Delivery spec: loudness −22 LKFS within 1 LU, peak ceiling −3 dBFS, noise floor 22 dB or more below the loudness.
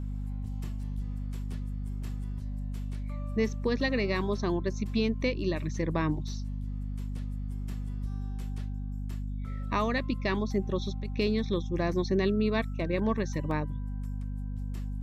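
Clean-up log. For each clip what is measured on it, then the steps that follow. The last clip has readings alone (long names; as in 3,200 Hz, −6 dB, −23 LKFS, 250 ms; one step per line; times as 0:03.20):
number of dropouts 1; longest dropout 1.3 ms; mains hum 50 Hz; hum harmonics up to 250 Hz; level of the hum −32 dBFS; integrated loudness −32.5 LKFS; sample peak −16.0 dBFS; target loudness −22.0 LKFS
→ repair the gap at 0:13.51, 1.3 ms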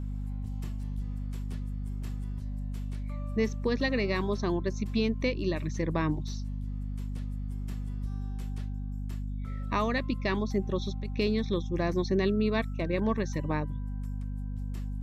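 number of dropouts 0; mains hum 50 Hz; hum harmonics up to 250 Hz; level of the hum −32 dBFS
→ hum removal 50 Hz, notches 5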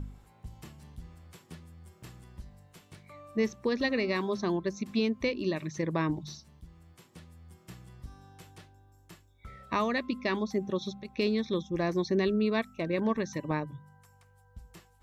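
mains hum none found; integrated loudness −31.0 LKFS; sample peak −17.5 dBFS; target loudness −22.0 LKFS
→ level +9 dB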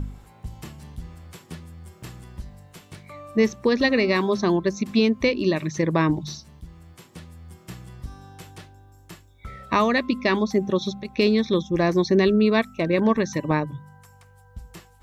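integrated loudness −22.0 LKFS; sample peak −8.5 dBFS; background noise floor −53 dBFS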